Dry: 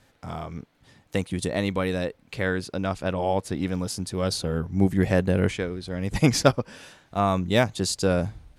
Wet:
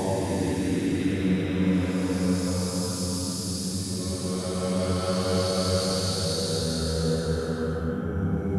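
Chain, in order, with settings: vocal rider 2 s; Paulstretch 6.8×, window 0.50 s, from 3.45

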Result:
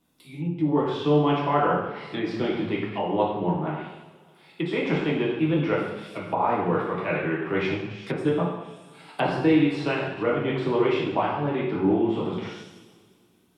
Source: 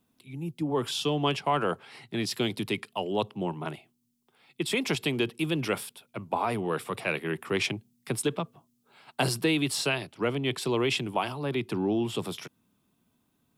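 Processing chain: two-slope reverb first 0.87 s, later 2.3 s, DRR -5.5 dB; treble ducked by the level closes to 1700 Hz, closed at -24.5 dBFS

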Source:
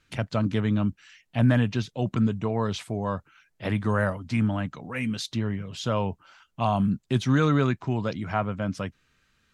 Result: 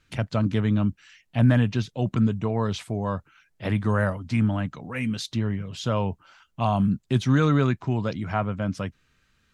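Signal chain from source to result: low shelf 160 Hz +4 dB

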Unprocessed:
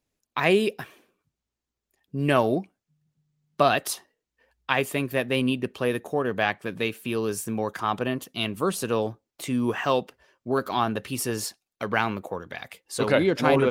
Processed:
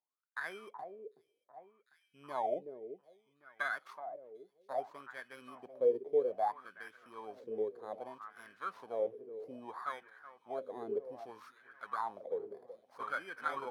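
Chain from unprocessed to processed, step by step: FFT order left unsorted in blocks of 16 samples; 0.8–2.45 bell 1200 Hz -5 dB 0.77 oct; echo with dull and thin repeats by turns 0.374 s, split 2500 Hz, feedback 77%, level -14 dB; wah 0.62 Hz 410–1600 Hz, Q 10; gain +1 dB

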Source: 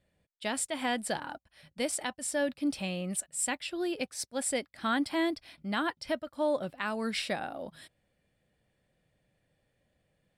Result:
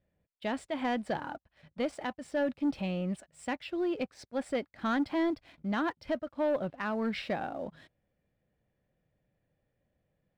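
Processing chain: tape spacing loss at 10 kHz 30 dB; sample leveller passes 1

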